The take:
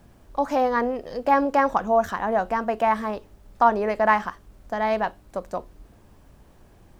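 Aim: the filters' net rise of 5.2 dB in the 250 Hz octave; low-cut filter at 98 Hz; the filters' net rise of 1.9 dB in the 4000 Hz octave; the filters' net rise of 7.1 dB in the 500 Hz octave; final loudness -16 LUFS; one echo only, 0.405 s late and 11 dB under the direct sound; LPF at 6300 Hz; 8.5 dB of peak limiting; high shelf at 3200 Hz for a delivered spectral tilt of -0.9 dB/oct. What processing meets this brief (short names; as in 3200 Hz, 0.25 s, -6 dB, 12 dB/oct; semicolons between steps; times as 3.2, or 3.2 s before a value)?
HPF 98 Hz; LPF 6300 Hz; bell 250 Hz +4 dB; bell 500 Hz +8.5 dB; high shelf 3200 Hz -4 dB; bell 4000 Hz +6 dB; limiter -10 dBFS; echo 0.405 s -11 dB; gain +5 dB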